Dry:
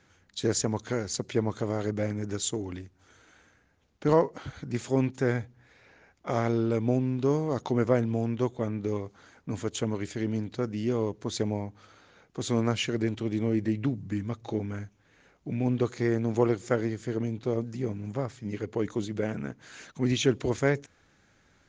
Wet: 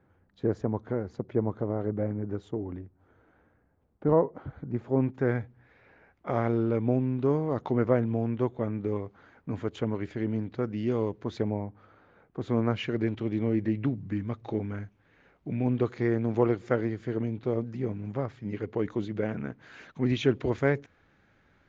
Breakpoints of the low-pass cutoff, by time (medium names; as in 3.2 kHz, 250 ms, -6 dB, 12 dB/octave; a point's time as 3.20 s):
4.84 s 1 kHz
5.38 s 2.2 kHz
10.52 s 2.2 kHz
10.97 s 3.7 kHz
11.64 s 1.5 kHz
12.39 s 1.5 kHz
13.03 s 2.8 kHz